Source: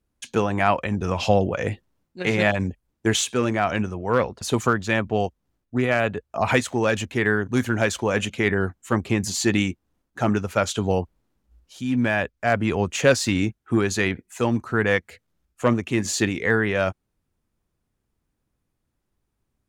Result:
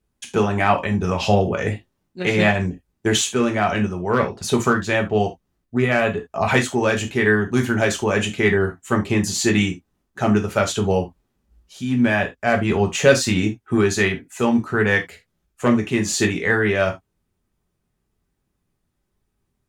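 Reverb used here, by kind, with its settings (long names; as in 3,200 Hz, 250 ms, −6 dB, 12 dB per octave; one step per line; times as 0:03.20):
reverb whose tail is shaped and stops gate 100 ms falling, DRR 2.5 dB
level +1 dB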